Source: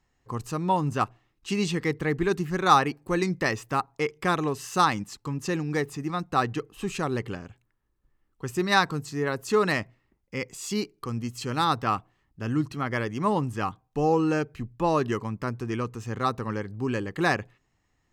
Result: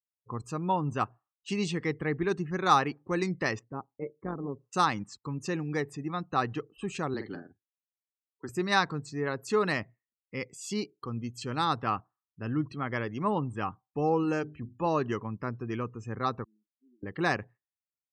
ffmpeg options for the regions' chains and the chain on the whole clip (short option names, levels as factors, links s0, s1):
-filter_complex "[0:a]asettb=1/sr,asplit=3[s0][s1][s2];[s0]atrim=end=3.594[s3];[s1]atrim=start=3.59:end=4.73,asetpts=PTS-STARTPTS,afade=t=in:d=0.004:c=qsin,afade=t=out:st=1.136:d=0.004:c=qsin,bandpass=f=220:t=q:w=0.58,tremolo=f=130:d=0.621[s4];[s2]atrim=start=4.726[s5];[s3][s4]acrossfade=d=0.004:c1=hsin:c2=qsin[s6];[s6][s5]acrossfade=d=0.004:c1=qsin:c2=hsin,asettb=1/sr,asplit=3[s7][s8][s9];[s7]atrim=end=7.144[s10];[s8]atrim=start=7.14:end=8.49,asetpts=PTS-STARTPTS,afade=t=in:d=0.004:c=qsin,afade=t=out:st=1.346:d=0.004:c=qsin,afreqshift=-13,highpass=210,equalizer=f=290:t=q:w=4:g=5,equalizer=f=520:t=q:w=4:g=-7,equalizer=f=1100:t=q:w=4:g=-5,equalizer=f=2600:t=q:w=4:g=-10,equalizer=f=4200:t=q:w=4:g=9,equalizer=f=6200:t=q:w=4:g=-7,lowpass=f=7900:w=0.5412,lowpass=f=7900:w=1.3066,asplit=2[s11][s12];[s12]adelay=47,volume=0.447[s13];[s11][s13]amix=inputs=2:normalize=0,atrim=end_sample=59535[s14];[s9]atrim=start=8.486[s15];[s10][s14]acrossfade=d=0.004:c1=hsin:c2=qsin[s16];[s16][s15]acrossfade=d=0.004:c1=qsin:c2=hsin,asettb=1/sr,asplit=3[s17][s18][s19];[s17]atrim=end=14.234[s20];[s18]atrim=start=14.23:end=14.86,asetpts=PTS-STARTPTS,afade=t=in:d=0.004:c=qsin,afade=t=out:st=0.626:d=0.004:c=qsin,equalizer=f=7500:t=o:w=0.22:g=4.5,bandreject=f=50:t=h:w=6,bandreject=f=100:t=h:w=6,bandreject=f=150:t=h:w=6,bandreject=f=200:t=h:w=6,bandreject=f=250:t=h:w=6,bandreject=f=300:t=h:w=6,bandreject=f=350:t=h:w=6,bandreject=f=400:t=h:w=6[s21];[s19]atrim=start=14.856[s22];[s20][s21]acrossfade=d=0.004:c1=hsin:c2=qsin[s23];[s23][s22]acrossfade=d=0.004:c1=qsin:c2=hsin,asettb=1/sr,asplit=3[s24][s25][s26];[s24]atrim=end=16.444[s27];[s25]atrim=start=16.44:end=17.03,asetpts=PTS-STARTPTS,afade=t=in:d=0.004:c=qsin,afade=t=out:st=0.586:d=0.004:c=qsin,asuperpass=centerf=270:order=12:qfactor=1.5,aderivative,asplit=2[s28][s29];[s29]adelay=33,volume=0.266[s30];[s28][s30]amix=inputs=2:normalize=0,atrim=end_sample=26019[s31];[s26]atrim=start=17.026[s32];[s27][s31]acrossfade=d=0.004:c1=hsin:c2=qsin[s33];[s33][s32]acrossfade=d=0.004:c1=qsin:c2=hsin,highpass=63,afftdn=nr=36:nf=-46,volume=0.631"